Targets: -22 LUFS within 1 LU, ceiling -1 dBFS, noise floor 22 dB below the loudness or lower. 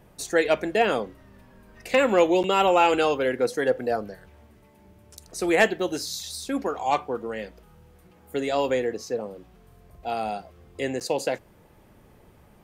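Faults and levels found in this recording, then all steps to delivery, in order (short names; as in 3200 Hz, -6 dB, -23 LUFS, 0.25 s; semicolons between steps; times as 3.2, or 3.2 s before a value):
dropouts 2; longest dropout 8.8 ms; loudness -24.5 LUFS; peak -8.0 dBFS; loudness target -22.0 LUFS
-> interpolate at 2.43/11, 8.8 ms; gain +2.5 dB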